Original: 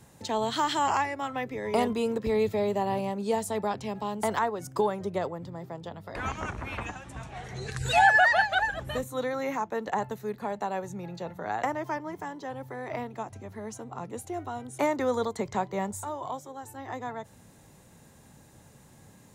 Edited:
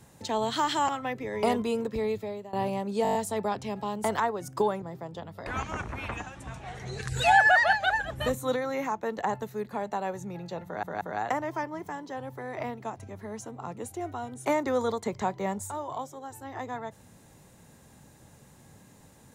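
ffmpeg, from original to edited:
-filter_complex "[0:a]asplit=14[s0][s1][s2][s3][s4][s5][s6][s7][s8][s9][s10][s11][s12][s13];[s0]atrim=end=0.892[s14];[s1]atrim=start=1.198:end=2.84,asetpts=PTS-STARTPTS,afade=t=out:st=0.532:d=1.11:c=qsin:silence=0.0891251[s15];[s2]atrim=start=2.84:end=3.362,asetpts=PTS-STARTPTS,afade=t=in:d=0.004:c=hsin:silence=0.0891251[s16];[s3]atrim=start=3.338:end=3.362[s17];[s4]atrim=start=3.338:end=3.362[s18];[s5]atrim=start=3.338:end=3.362[s19];[s6]atrim=start=3.338:end=3.362[s20];[s7]atrim=start=3.338:end=3.362[s21];[s8]atrim=start=3.338:end=5.012[s22];[s9]atrim=start=5.508:end=8.902[s23];[s10]atrim=start=8.898:end=9.252,asetpts=PTS-STARTPTS,volume=1.5[s24];[s11]atrim=start=9.248:end=11.522[s25];[s12]atrim=start=11.338:end=11.522[s26];[s13]atrim=start=11.338[s27];[s15][s16]concat=n=2:v=0:a=1[s28];[s14][s28]acrossfade=d=0.004:c1=hsin:c2=hsin[s29];[s29][s17]acrossfade=d=0.004:c1=hsin:c2=hsin[s30];[s30][s18]acrossfade=d=0.004:c1=hsin:c2=hsin[s31];[s31][s19]acrossfade=d=0.004:c1=hsin:c2=hsin[s32];[s32][s20]acrossfade=d=0.004:c1=hsin:c2=hsin[s33];[s33][s21]acrossfade=d=0.004:c1=hsin:c2=hsin[s34];[s34][s22]acrossfade=d=0.004:c1=hsin:c2=hsin[s35];[s35][s23]acrossfade=d=0.004:c1=hsin:c2=hsin[s36];[s36][s24]acrossfade=d=0.004:c1=hsin:c2=hsin[s37];[s37][s25]acrossfade=d=0.004:c1=hsin:c2=hsin[s38];[s38][s26]acrossfade=d=0.004:c1=hsin:c2=hsin[s39];[s39][s27]acrossfade=d=0.004:c1=hsin:c2=hsin"

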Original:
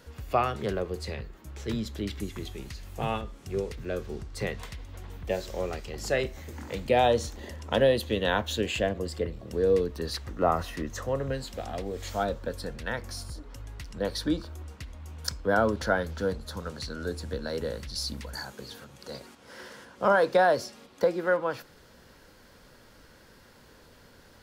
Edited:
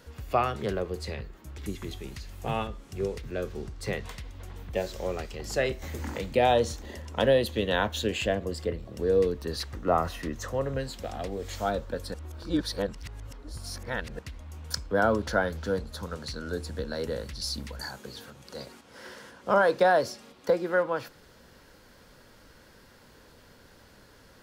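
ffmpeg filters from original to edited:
-filter_complex "[0:a]asplit=6[s0][s1][s2][s3][s4][s5];[s0]atrim=end=1.582[s6];[s1]atrim=start=2.118:end=6.362[s7];[s2]atrim=start=6.358:end=6.722,asetpts=PTS-STARTPTS,volume=1.88[s8];[s3]atrim=start=6.718:end=12.682[s9];[s4]atrim=start=12.678:end=14.732,asetpts=PTS-STARTPTS,areverse[s10];[s5]atrim=start=14.728[s11];[s6][s7]acrossfade=d=0.004:c1=hsin:c2=hsin[s12];[s12][s8]acrossfade=d=0.004:c1=hsin:c2=hsin[s13];[s13][s9]acrossfade=d=0.004:c1=hsin:c2=hsin[s14];[s14][s10]acrossfade=d=0.004:c1=hsin:c2=hsin[s15];[s15][s11]acrossfade=d=0.004:c1=hsin:c2=hsin"

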